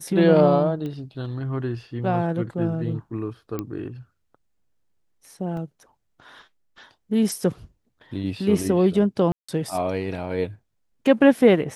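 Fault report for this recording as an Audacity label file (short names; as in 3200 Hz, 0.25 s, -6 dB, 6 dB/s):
0.860000	0.860000	pop -22 dBFS
3.590000	3.590000	pop -15 dBFS
5.570000	5.570000	gap 2.2 ms
9.320000	9.480000	gap 0.165 s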